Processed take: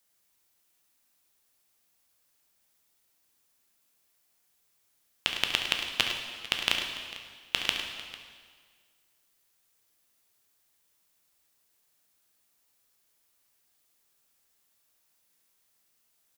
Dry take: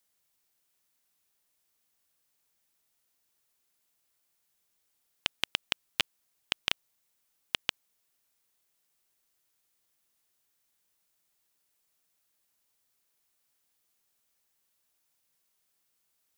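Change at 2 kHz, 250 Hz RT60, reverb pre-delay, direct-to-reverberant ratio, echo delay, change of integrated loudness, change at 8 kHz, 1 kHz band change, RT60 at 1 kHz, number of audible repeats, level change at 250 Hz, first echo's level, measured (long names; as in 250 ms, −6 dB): +5.0 dB, 1.8 s, 6 ms, 1.0 dB, 69 ms, +3.0 dB, +5.0 dB, +5.0 dB, 1.7 s, 3, +5.5 dB, −11.0 dB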